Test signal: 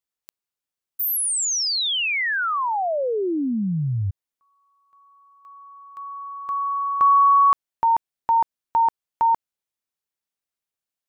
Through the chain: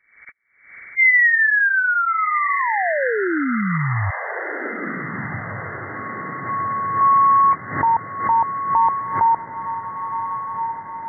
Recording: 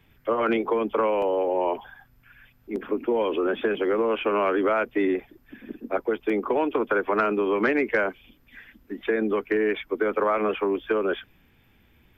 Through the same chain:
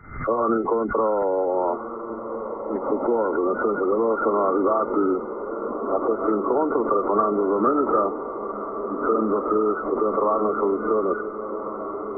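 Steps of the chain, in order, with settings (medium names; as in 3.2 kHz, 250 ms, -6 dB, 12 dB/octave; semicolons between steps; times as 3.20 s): knee-point frequency compression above 1.1 kHz 4:1; echo that smears into a reverb 1480 ms, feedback 60%, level -9 dB; swell ahead of each attack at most 100 dB/s; trim +1.5 dB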